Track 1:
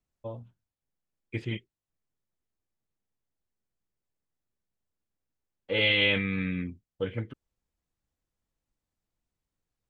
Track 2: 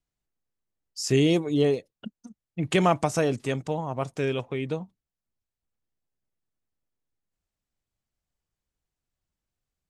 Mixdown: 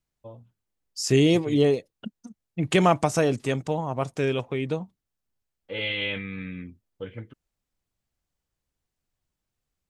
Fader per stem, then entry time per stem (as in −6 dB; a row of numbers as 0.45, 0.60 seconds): −5.0, +2.0 decibels; 0.00, 0.00 seconds